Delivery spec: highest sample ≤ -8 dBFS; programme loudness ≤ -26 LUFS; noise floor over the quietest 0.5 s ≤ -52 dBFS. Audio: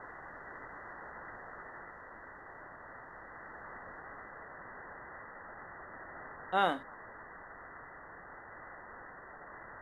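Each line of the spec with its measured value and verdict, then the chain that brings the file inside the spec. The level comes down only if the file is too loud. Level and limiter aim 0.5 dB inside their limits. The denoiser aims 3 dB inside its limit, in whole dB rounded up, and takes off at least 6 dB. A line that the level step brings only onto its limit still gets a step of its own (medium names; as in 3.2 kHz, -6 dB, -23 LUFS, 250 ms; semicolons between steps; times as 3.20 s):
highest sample -15.0 dBFS: pass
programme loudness -43.5 LUFS: pass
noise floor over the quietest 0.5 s -51 dBFS: fail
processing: noise reduction 6 dB, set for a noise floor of -51 dBFS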